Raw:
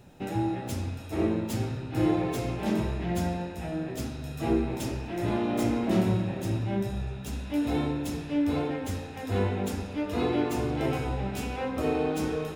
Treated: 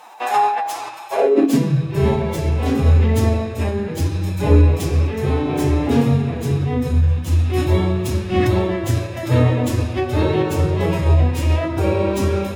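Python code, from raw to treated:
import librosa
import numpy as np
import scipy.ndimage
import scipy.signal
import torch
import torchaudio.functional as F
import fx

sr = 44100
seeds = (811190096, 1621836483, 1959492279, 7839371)

y = fx.filter_sweep_highpass(x, sr, from_hz=910.0, to_hz=60.0, start_s=1.07, end_s=1.98, q=5.7)
y = fx.pitch_keep_formants(y, sr, semitones=4.0)
y = fx.rider(y, sr, range_db=5, speed_s=2.0)
y = y * 10.0 ** (8.0 / 20.0)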